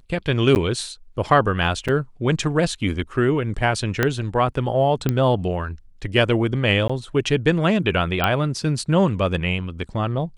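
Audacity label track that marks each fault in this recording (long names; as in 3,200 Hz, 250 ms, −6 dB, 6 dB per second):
0.550000	0.560000	drop-out 9.8 ms
1.880000	1.890000	drop-out 5.6 ms
4.030000	4.030000	click −4 dBFS
5.090000	5.090000	click −8 dBFS
6.880000	6.890000	drop-out 15 ms
8.240000	8.240000	click −6 dBFS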